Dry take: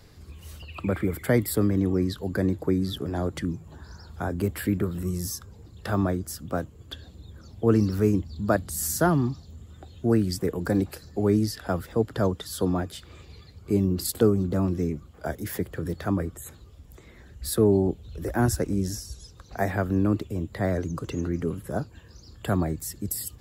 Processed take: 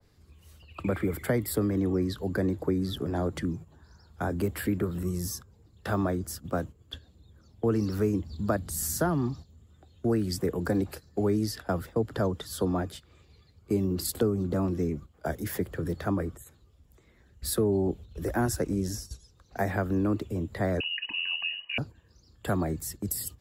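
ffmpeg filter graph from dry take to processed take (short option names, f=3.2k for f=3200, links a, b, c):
-filter_complex "[0:a]asettb=1/sr,asplit=3[a][b][c];[a]atrim=end=20.804[d];[b]atrim=start=20.8:end=21.78,asetpts=PTS-STARTPTS,afade=t=in:d=0.004:c=qsin,afade=t=out:st=0.976:d=0.004:c=qsin,asuperstop=centerf=1600:order=12:qfactor=4.9,lowpass=f=2.6k:t=q:w=0.5098,lowpass=f=2.6k:t=q:w=0.6013,lowpass=f=2.6k:t=q:w=0.9,lowpass=f=2.6k:t=q:w=2.563,afreqshift=-3000[e];[c]atrim=start=21.776[f];[d][e]acrossfade=d=0.004:c1=hsin:c2=qsin[g];[g][f]acrossfade=d=0.004:c1=qsin:c2=hsin,agate=range=-11dB:threshold=-38dB:ratio=16:detection=peak,acrossover=split=110|260[h][i][j];[h]acompressor=threshold=-36dB:ratio=4[k];[i]acompressor=threshold=-33dB:ratio=4[l];[j]acompressor=threshold=-25dB:ratio=4[m];[k][l][m]amix=inputs=3:normalize=0,adynamicequalizer=threshold=0.00447:dfrequency=1800:dqfactor=0.7:tfrequency=1800:tqfactor=0.7:attack=5:release=100:ratio=0.375:range=1.5:mode=cutabove:tftype=highshelf"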